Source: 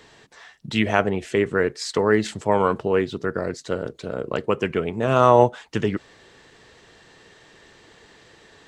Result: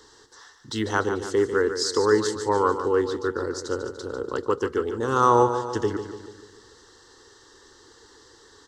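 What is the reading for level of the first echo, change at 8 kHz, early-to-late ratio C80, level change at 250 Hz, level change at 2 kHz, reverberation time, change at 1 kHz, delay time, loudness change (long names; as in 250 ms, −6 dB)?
−9.5 dB, +4.5 dB, no reverb audible, −3.0 dB, −4.0 dB, no reverb audible, −1.0 dB, 146 ms, −2.0 dB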